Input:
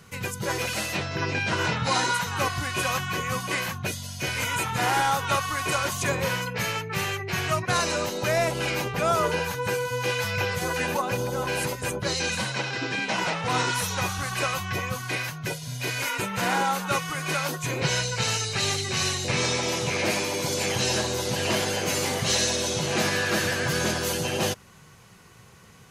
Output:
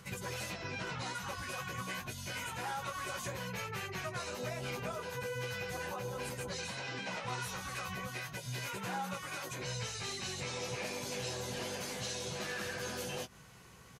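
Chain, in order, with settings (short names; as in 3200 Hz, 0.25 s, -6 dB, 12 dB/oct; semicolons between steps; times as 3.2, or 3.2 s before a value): dynamic EQ 320 Hz, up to -5 dB, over -49 dBFS, Q 6.1; compressor 4:1, threshold -34 dBFS, peak gain reduction 12.5 dB; plain phase-vocoder stretch 0.54×; doubler 16 ms -7.5 dB; gain -2 dB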